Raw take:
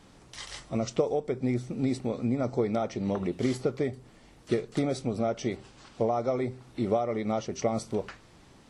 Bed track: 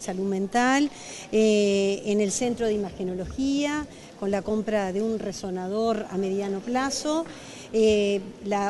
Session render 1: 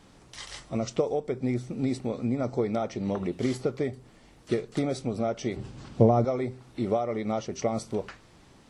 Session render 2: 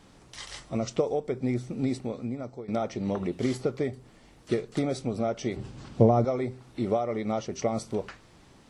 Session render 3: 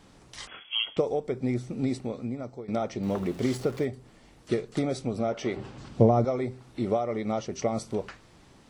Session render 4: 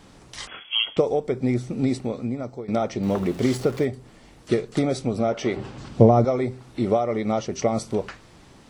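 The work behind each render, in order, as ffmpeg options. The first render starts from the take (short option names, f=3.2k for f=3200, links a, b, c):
-filter_complex "[0:a]asettb=1/sr,asplit=3[a][b][c];[a]atrim=end=5.564[d];[b]atrim=start=5.56:end=6.25,asetpts=PTS-STARTPTS,afade=t=in:d=0.004:c=qsin,afade=t=out:st=0.686:d=0.004:c=qsin,equalizer=f=110:w=0.32:g=15[e];[c]atrim=start=6.246[f];[d][e]acrossfade=d=0.004:c1=hsin:c2=qsin[g];[g][f]acrossfade=d=0.004:c1=qsin:c2=hsin"
-filter_complex "[0:a]asplit=2[a][b];[a]atrim=end=2.68,asetpts=PTS-STARTPTS,afade=t=out:st=1.86:d=0.82:silence=0.141254[c];[b]atrim=start=2.68,asetpts=PTS-STARTPTS,afade=t=in:d=0.004:c=hsin:silence=0.141254[d];[c][d]concat=n=2:v=0:a=1"
-filter_complex "[0:a]asettb=1/sr,asplit=3[a][b][c];[a]atrim=end=0.474[d];[b]atrim=start=0.47:end=0.97,asetpts=PTS-STARTPTS,afade=t=in:d=0.004:c=qsin,afade=t=out:st=0.496:d=0.004:c=qsin,lowpass=f=2.9k:t=q:w=0.5098,lowpass=f=2.9k:t=q:w=0.6013,lowpass=f=2.9k:t=q:w=0.9,lowpass=f=2.9k:t=q:w=2.563,afreqshift=-3400[e];[c]atrim=start=0.966[f];[d][e]acrossfade=d=0.004:c1=hsin:c2=qsin[g];[g][f]acrossfade=d=0.004:c1=qsin:c2=hsin,asettb=1/sr,asplit=3[h][i][j];[h]atrim=end=3.034[k];[i]atrim=start=3.03:end=3.85,asetpts=PTS-STARTPTS,afade=t=in:d=0.004:c=qsin,afade=t=out:st=0.816:d=0.004:c=qsin,aeval=exprs='val(0)+0.5*0.00891*sgn(val(0))':c=same[l];[j]atrim=start=3.846[m];[k][l]acrossfade=d=0.004:c1=hsin:c2=qsin[n];[n][m]acrossfade=d=0.004:c1=qsin:c2=hsin,asettb=1/sr,asplit=3[o][p][q];[o]atrim=end=5.324[r];[p]atrim=start=5.32:end=5.78,asetpts=PTS-STARTPTS,afade=t=in:d=0.004:c=qsin,afade=t=out:st=0.456:d=0.004:c=qsin,asplit=2[s][t];[t]highpass=f=720:p=1,volume=14dB,asoftclip=type=tanh:threshold=-16.5dB[u];[s][u]amix=inputs=2:normalize=0,lowpass=f=1.7k:p=1,volume=-6dB[v];[q]atrim=start=5.776[w];[r][v]acrossfade=d=0.004:c1=hsin:c2=qsin[x];[x][w]acrossfade=d=0.004:c1=qsin:c2=hsin"
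-af "volume=5.5dB"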